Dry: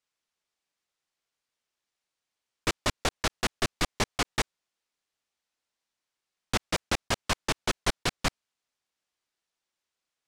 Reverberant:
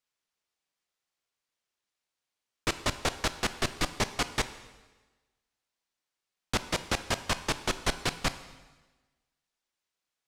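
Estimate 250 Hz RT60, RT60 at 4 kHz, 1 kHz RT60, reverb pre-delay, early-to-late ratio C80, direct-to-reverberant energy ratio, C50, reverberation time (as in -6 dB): 1.3 s, 1.2 s, 1.2 s, 7 ms, 15.0 dB, 11.5 dB, 13.0 dB, 1.2 s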